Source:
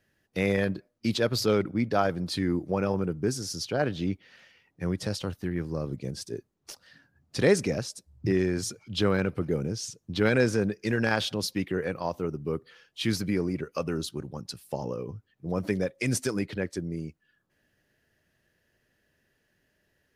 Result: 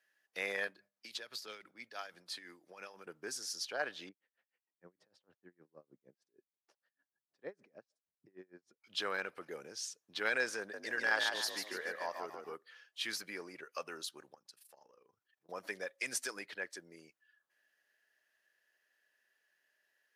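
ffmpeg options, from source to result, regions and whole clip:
ffmpeg -i in.wav -filter_complex "[0:a]asettb=1/sr,asplit=3[link_01][link_02][link_03];[link_01]atrim=end=0.674[link_04];[link_02]atrim=start=0.67:end=3.07,asetpts=PTS-STARTPTS,afade=type=in:duration=0.004:curve=qsin,afade=type=out:start_time=2.396:duration=0.004:curve=qsin,bandreject=frequency=50:width_type=h:width=6,bandreject=frequency=100:width_type=h:width=6,bandreject=frequency=150:width_type=h:width=6,bandreject=frequency=200:width_type=h:width=6,acrossover=split=190|2100[link_05][link_06][link_07];[link_05]acompressor=threshold=-37dB:ratio=4[link_08];[link_06]acompressor=threshold=-36dB:ratio=4[link_09];[link_07]acompressor=threshold=-35dB:ratio=4[link_10];[link_08][link_09][link_10]amix=inputs=3:normalize=0,tremolo=f=6:d=0.56[link_11];[link_03]atrim=start=3.066[link_12];[link_04][link_11]acrossfade=duration=0.004:curve1=hsin:curve2=qsin[link_13];[link_13][link_12]acrossfade=duration=0.004:curve1=qsin:curve2=hsin,asettb=1/sr,asplit=3[link_14][link_15][link_16];[link_14]atrim=end=4.094[link_17];[link_15]atrim=start=4.09:end=8.84,asetpts=PTS-STARTPTS,afade=type=in:duration=0.004:curve=qsin,afade=type=out:start_time=4.746:duration=0.004:curve=qsin,bandpass=frequency=190:width_type=q:width=0.78,aeval=exprs='val(0)*pow(10,-30*(0.5-0.5*cos(2*PI*6.5*n/s))/20)':channel_layout=same[link_18];[link_16]atrim=start=8.836[link_19];[link_17][link_18]acrossfade=duration=0.004:curve1=hsin:curve2=qsin[link_20];[link_20][link_19]acrossfade=duration=0.004:curve1=qsin:curve2=hsin,asettb=1/sr,asplit=3[link_21][link_22][link_23];[link_21]atrim=end=10.594[link_24];[link_22]atrim=start=10.59:end=12.54,asetpts=PTS-STARTPTS,afade=type=in:duration=0.004:curve=qsin,afade=type=out:start_time=1.946:duration=0.004:curve=qsin,bandreject=frequency=2500:width=8.9,asplit=6[link_25][link_26][link_27][link_28][link_29][link_30];[link_26]adelay=144,afreqshift=53,volume=-5dB[link_31];[link_27]adelay=288,afreqshift=106,volume=-12.7dB[link_32];[link_28]adelay=432,afreqshift=159,volume=-20.5dB[link_33];[link_29]adelay=576,afreqshift=212,volume=-28.2dB[link_34];[link_30]adelay=720,afreqshift=265,volume=-36dB[link_35];[link_25][link_31][link_32][link_33][link_34][link_35]amix=inputs=6:normalize=0,atrim=end_sample=85995[link_36];[link_23]atrim=start=12.536[link_37];[link_24][link_36]acrossfade=duration=0.004:curve1=hsin:curve2=qsin[link_38];[link_38][link_37]acrossfade=duration=0.004:curve1=qsin:curve2=hsin,asettb=1/sr,asplit=3[link_39][link_40][link_41];[link_39]atrim=end=14.344[link_42];[link_40]atrim=start=14.34:end=15.49,asetpts=PTS-STARTPTS,afade=type=in:duration=0.004:curve=qsin,afade=type=out:start_time=1.146:duration=0.004:curve=qsin,acompressor=threshold=-45dB:ratio=5:attack=3.2:release=140:knee=1:detection=peak,tremolo=f=25:d=0.71[link_43];[link_41]atrim=start=15.486[link_44];[link_42][link_43]acrossfade=duration=0.004:curve1=hsin:curve2=qsin[link_45];[link_45][link_44]acrossfade=duration=0.004:curve1=qsin:curve2=hsin,highpass=780,equalizer=frequency=1700:width=7.3:gain=5,volume=-5.5dB" out.wav

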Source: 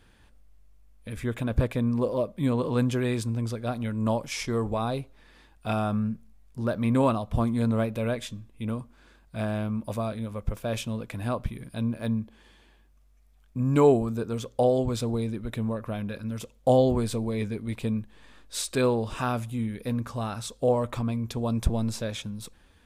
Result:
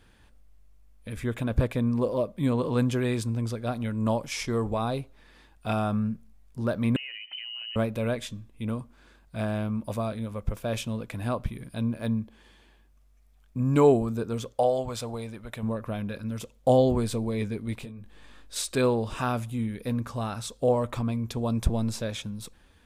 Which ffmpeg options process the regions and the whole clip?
ffmpeg -i in.wav -filter_complex "[0:a]asettb=1/sr,asplit=3[link_01][link_02][link_03];[link_01]atrim=end=6.964[link_04];[link_02]atrim=start=6.96:end=7.76,asetpts=PTS-STARTPTS,afade=type=in:duration=0.004:curve=qsin,afade=type=out:start_time=0.796:duration=0.004:curve=qsin,lowpass=frequency=2600:width_type=q:width=0.5098,lowpass=frequency=2600:width_type=q:width=0.6013,lowpass=frequency=2600:width_type=q:width=0.9,lowpass=frequency=2600:width_type=q:width=2.563,afreqshift=-3100,acompressor=threshold=-35dB:ratio=8:attack=3.2:release=140:knee=1:detection=peak[link_05];[link_03]atrim=start=7.756[link_06];[link_04][link_05]acrossfade=duration=0.004:curve1=hsin:curve2=qsin[link_07];[link_07][link_06]acrossfade=duration=0.004:curve1=qsin:curve2=hsin,asettb=1/sr,asplit=3[link_08][link_09][link_10];[link_08]atrim=end=14.534[link_11];[link_09]atrim=start=14.53:end=15.63,asetpts=PTS-STARTPTS,afade=type=in:duration=0.004:curve=qsin,afade=type=out:start_time=1.096:duration=0.004:curve=qsin,lowshelf=frequency=480:width_type=q:width=1.5:gain=-7.5,bandreject=frequency=3800:width=23[link_12];[link_10]atrim=start=15.626[link_13];[link_11][link_12]acrossfade=duration=0.004:curve1=hsin:curve2=qsin[link_14];[link_14][link_13]acrossfade=duration=0.004:curve1=qsin:curve2=hsin,asettb=1/sr,asplit=3[link_15][link_16][link_17];[link_15]atrim=end=17.774[link_18];[link_16]atrim=start=17.77:end=18.56,asetpts=PTS-STARTPTS,afade=type=in:duration=0.004:curve=qsin,afade=type=out:start_time=0.786:duration=0.004:curve=qsin,bandreject=frequency=970:width=22,acompressor=threshold=-37dB:ratio=6:attack=3.2:release=140:knee=1:detection=peak,asplit=2[link_19][link_20];[link_20]adelay=21,volume=-6.5dB[link_21];[link_19][link_21]amix=inputs=2:normalize=0,atrim=end_sample=34839[link_22];[link_17]atrim=start=18.556[link_23];[link_18][link_22]acrossfade=duration=0.004:curve1=hsin:curve2=qsin[link_24];[link_24][link_23]acrossfade=duration=0.004:curve1=qsin:curve2=hsin" out.wav

